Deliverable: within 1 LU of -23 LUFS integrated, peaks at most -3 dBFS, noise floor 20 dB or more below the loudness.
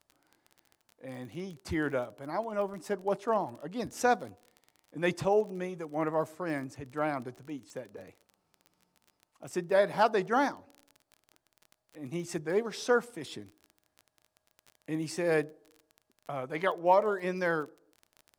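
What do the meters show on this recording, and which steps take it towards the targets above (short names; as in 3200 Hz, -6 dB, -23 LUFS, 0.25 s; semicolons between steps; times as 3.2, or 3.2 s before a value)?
ticks 27/s; loudness -31.5 LUFS; peak -12.0 dBFS; loudness target -23.0 LUFS
-> de-click; gain +8.5 dB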